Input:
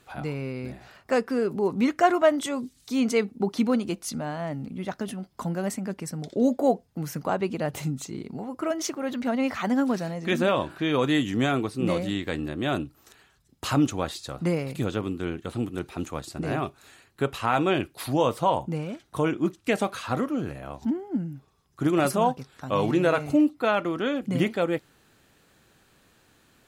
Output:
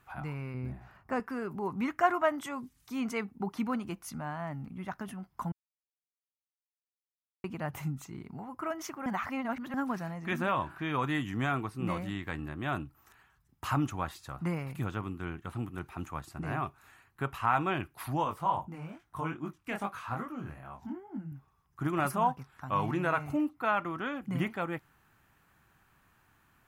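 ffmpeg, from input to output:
-filter_complex "[0:a]asettb=1/sr,asplit=3[a][b][c];[a]atrim=end=0.544[d];[b]atrim=start=0.54:end=1.2,asetpts=PTS-STARTPTS,afade=t=in:d=0.004:c=qsin,afade=t=out:st=0.656:d=0.004:c=qsin,tiltshelf=f=670:g=5.5[e];[c]atrim=start=1.196[f];[d][e]acrossfade=d=0.004:c1=hsin:c2=qsin[g];[g][f]acrossfade=d=0.004:c1=qsin:c2=hsin,asettb=1/sr,asplit=3[h][i][j];[h]atrim=end=18.244[k];[i]atrim=start=18.24:end=21.32,asetpts=PTS-STARTPTS,afade=t=in:d=0.004:c=qsin,afade=t=out:st=3.076:d=0.004:c=qsin,flanger=delay=19:depth=6.6:speed=2.4[l];[j]atrim=start=21.316[m];[k][l]acrossfade=d=0.004:c1=hsin:c2=qsin[n];[n][m]acrossfade=d=0.004:c1=qsin:c2=hsin,asplit=5[o][p][q][r][s];[o]atrim=end=5.52,asetpts=PTS-STARTPTS,afade=t=out:st=5.516:d=0.004:c=hsin[t];[p]atrim=start=5.52:end=7.44,asetpts=PTS-STARTPTS,volume=0[u];[q]atrim=start=7.44:end=9.062,asetpts=PTS-STARTPTS,afade=t=in:d=0.004:c=hsin[v];[r]atrim=start=9.058:end=9.742,asetpts=PTS-STARTPTS,areverse[w];[s]atrim=start=9.738[x];[t][u][v]concat=n=3:v=0:a=1[y];[y][w]acrossfade=d=0.004:c1=hsin:c2=hsin[z];[z][x]acrossfade=d=0.004:c1=hsin:c2=hsin,equalizer=f=250:t=o:w=1:g=-5,equalizer=f=500:t=o:w=1:g=-12,equalizer=f=1k:t=o:w=1:g=5,equalizer=f=4k:t=o:w=1:g=-11,equalizer=f=8k:t=o:w=1:g=-8,volume=-2.5dB"

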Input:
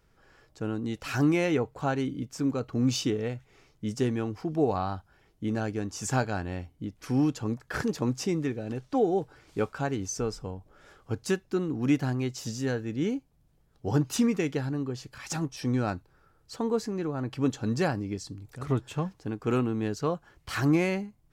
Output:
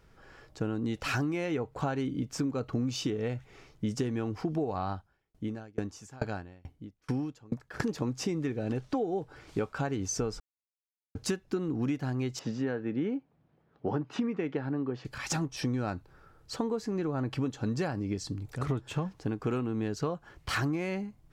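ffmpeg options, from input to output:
-filter_complex "[0:a]asettb=1/sr,asplit=3[a][b][c];[a]atrim=end=4.914[d];[b]atrim=start=4.91:end=7.8,asetpts=PTS-STARTPTS,afade=t=in:d=0.004:c=qsin,afade=t=out:st=2.886:d=0.004:c=qsin,aeval=exprs='val(0)*pow(10,-32*if(lt(mod(2.3*n/s,1),2*abs(2.3)/1000),1-mod(2.3*n/s,1)/(2*abs(2.3)/1000),(mod(2.3*n/s,1)-2*abs(2.3)/1000)/(1-2*abs(2.3)/1000))/20)':c=same[e];[c]atrim=start=7.796[f];[d][e]acrossfade=d=0.004:c1=hsin:c2=qsin[g];[g][f]acrossfade=d=0.004:c1=qsin:c2=hsin,asettb=1/sr,asplit=3[h][i][j];[h]atrim=end=12.394[k];[i]atrim=start=12.39:end=15.05,asetpts=PTS-STARTPTS,afade=t=in:d=0.004:c=qsin,afade=t=out:st=2.656:d=0.004:c=qsin,highpass=170,lowpass=2.3k[l];[j]atrim=start=15.046[m];[k][l]acrossfade=d=0.004:c1=hsin:c2=qsin[n];[n][m]acrossfade=d=0.004:c1=qsin:c2=hsin,asplit=3[o][p][q];[o]atrim=end=10.4,asetpts=PTS-STARTPTS,afade=t=out:st=10.396:d=0.004:c=hsin[r];[p]atrim=start=10.4:end=11.15,asetpts=PTS-STARTPTS,volume=0[s];[q]atrim=start=11.15,asetpts=PTS-STARTPTS,afade=t=in:d=0.004:c=hsin[t];[r][s][t]concat=n=3:v=0:a=1,highshelf=f=6.8k:g=-6.5,acompressor=threshold=-33dB:ratio=12,volume=5.5dB"

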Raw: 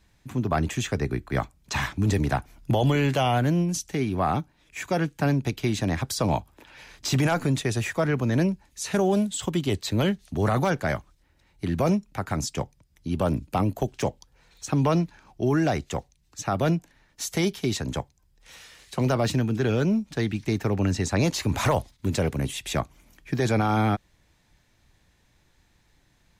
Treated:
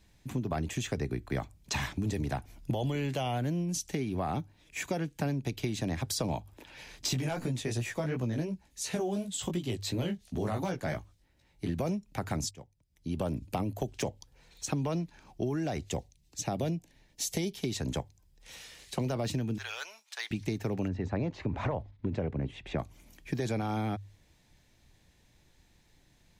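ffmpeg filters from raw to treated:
-filter_complex "[0:a]asplit=3[a][b][c];[a]afade=t=out:st=7.13:d=0.02[d];[b]flanger=delay=16:depth=3.7:speed=2.8,afade=t=in:st=7.13:d=0.02,afade=t=out:st=11.68:d=0.02[e];[c]afade=t=in:st=11.68:d=0.02[f];[d][e][f]amix=inputs=3:normalize=0,asettb=1/sr,asplit=3[g][h][i];[g]atrim=end=15.904[j];[h]atrim=start=15.9:end=17.57,asetpts=PTS-STARTPTS,afade=t=in:d=0.004:c=qsin,afade=t=out:st=1.666:d=0.004:c=qsin,equalizer=f=1.3k:t=o:w=0.86:g=-8.5[k];[i]atrim=start=17.566[l];[j][k]acrossfade=d=0.004:c1=hsin:c2=qsin[m];[m][l]acrossfade=d=0.004:c1=qsin:c2=hsin,asettb=1/sr,asplit=3[n][o][p];[n]atrim=end=19.584[q];[o]atrim=start=19.58:end=20.31,asetpts=PTS-STARTPTS,afade=t=in:d=0.004:c=qsin,afade=t=out:st=0.726:d=0.004:c=qsin,highpass=f=970:w=0.5412,highpass=f=970:w=1.3066[r];[p]atrim=start=20.306[s];[q][r]acrossfade=d=0.004:c1=hsin:c2=qsin[t];[t][s]acrossfade=d=0.004:c1=qsin:c2=hsin,asplit=3[u][v][w];[u]afade=t=out:st=20.87:d=0.02[x];[v]lowpass=1.7k,afade=t=in:st=20.87:d=0.02,afade=t=out:st=22.78:d=0.02[y];[w]afade=t=in:st=22.78:d=0.02[z];[x][y][z]amix=inputs=3:normalize=0,asplit=2[aa][ab];[aa]atrim=end=12.51,asetpts=PTS-STARTPTS,afade=t=out:st=12.506:d=0.004:c=hsin:silence=0.0944061[ac];[ab]atrim=start=12.51,asetpts=PTS-STARTPTS,afade=t=in:d=0.76:c=qua:silence=0.0944061[ad];[ac][ad]concat=n=2:v=0:a=1,equalizer=f=1.3k:t=o:w=1:g=-6,bandreject=f=50:t=h:w=6,bandreject=f=100:t=h:w=6,acompressor=threshold=-29dB:ratio=6"

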